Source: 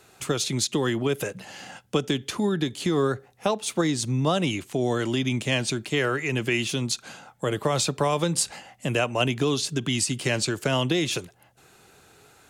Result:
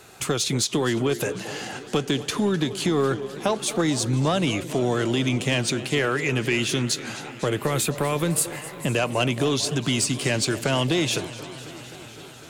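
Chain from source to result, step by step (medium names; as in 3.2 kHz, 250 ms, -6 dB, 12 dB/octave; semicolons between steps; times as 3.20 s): 7.62–8.86 s: FFT filter 380 Hz 0 dB, 780 Hz -7 dB, 2 kHz +3 dB, 5.3 kHz -10 dB, 14 kHz +13 dB; in parallel at +1.5 dB: compression, threshold -32 dBFS, peak gain reduction 13.5 dB; on the sum: saturation -13 dBFS, distortion -19 dB; on a send: repeats whose band climbs or falls 224 ms, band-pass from 450 Hz, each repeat 0.7 oct, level -12 dB; on the sum: modulated delay 252 ms, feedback 78%, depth 158 cents, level -17 dB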